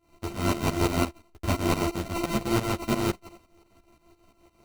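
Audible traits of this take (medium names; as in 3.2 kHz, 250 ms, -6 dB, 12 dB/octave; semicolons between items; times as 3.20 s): a buzz of ramps at a fixed pitch in blocks of 128 samples; tremolo saw up 5.8 Hz, depth 85%; aliases and images of a low sample rate 1.7 kHz, jitter 0%; a shimmering, thickened sound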